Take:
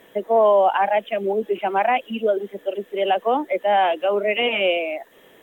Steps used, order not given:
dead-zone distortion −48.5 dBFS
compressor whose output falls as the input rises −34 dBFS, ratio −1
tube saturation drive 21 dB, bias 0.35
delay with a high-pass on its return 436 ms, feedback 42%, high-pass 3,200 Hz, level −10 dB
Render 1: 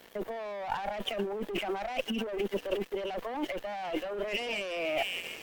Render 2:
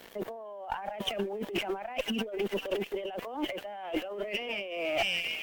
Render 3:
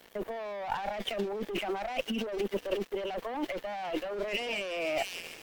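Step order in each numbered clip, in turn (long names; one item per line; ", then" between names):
delay with a high-pass on its return, then dead-zone distortion, then tube saturation, then compressor whose output falls as the input rises
dead-zone distortion, then delay with a high-pass on its return, then compressor whose output falls as the input rises, then tube saturation
tube saturation, then delay with a high-pass on its return, then dead-zone distortion, then compressor whose output falls as the input rises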